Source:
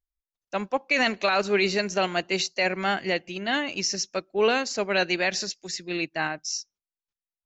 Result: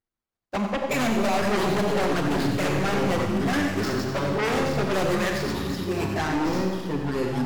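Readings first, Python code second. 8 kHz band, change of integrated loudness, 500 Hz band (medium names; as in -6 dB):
no reading, +1.0 dB, +1.5 dB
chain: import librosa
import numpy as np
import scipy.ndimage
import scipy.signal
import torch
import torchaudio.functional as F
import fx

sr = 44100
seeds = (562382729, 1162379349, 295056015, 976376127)

p1 = scipy.signal.medfilt(x, 15)
p2 = fx.highpass(p1, sr, hz=97.0, slope=6)
p3 = fx.low_shelf(p2, sr, hz=390.0, db=4.5)
p4 = fx.env_flanger(p3, sr, rest_ms=8.8, full_db=-20.0)
p5 = fx.echo_pitch(p4, sr, ms=135, semitones=-6, count=3, db_per_echo=-6.0)
p6 = p5 + 10.0 ** (-10.0 / 20.0) * np.pad(p5, (int(90 * sr / 1000.0), 0))[:len(p5)]
p7 = fx.fold_sine(p6, sr, drive_db=15, ceiling_db=-11.0)
p8 = p6 + F.gain(torch.from_numpy(p7), -6.0).numpy()
p9 = fx.rev_schroeder(p8, sr, rt60_s=2.0, comb_ms=28, drr_db=4.0)
y = F.gain(torch.from_numpy(p9), -7.5).numpy()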